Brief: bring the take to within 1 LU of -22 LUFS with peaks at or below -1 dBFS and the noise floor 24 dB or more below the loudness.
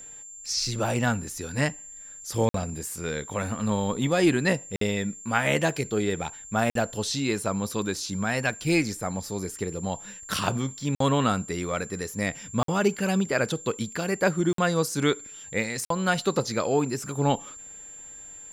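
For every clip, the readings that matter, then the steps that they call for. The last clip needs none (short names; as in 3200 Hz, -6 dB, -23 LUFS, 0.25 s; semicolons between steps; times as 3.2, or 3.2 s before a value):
dropouts 7; longest dropout 53 ms; steady tone 7300 Hz; tone level -41 dBFS; loudness -27.0 LUFS; peak -7.0 dBFS; loudness target -22.0 LUFS
-> interpolate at 2.49/4.76/6.7/10.95/12.63/14.53/15.85, 53 ms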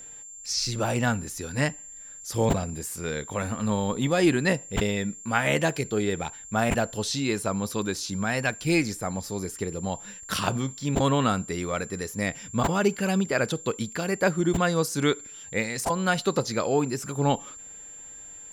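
dropouts 0; steady tone 7300 Hz; tone level -41 dBFS
-> notch 7300 Hz, Q 30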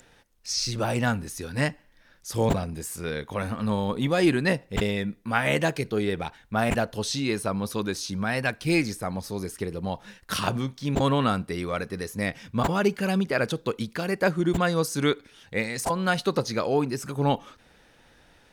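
steady tone none; loudness -27.0 LUFS; peak -7.0 dBFS; loudness target -22.0 LUFS
-> gain +5 dB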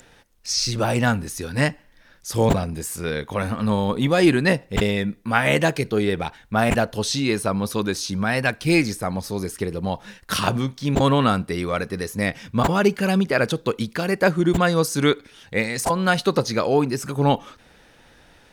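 loudness -22.0 LUFS; peak -2.0 dBFS; noise floor -54 dBFS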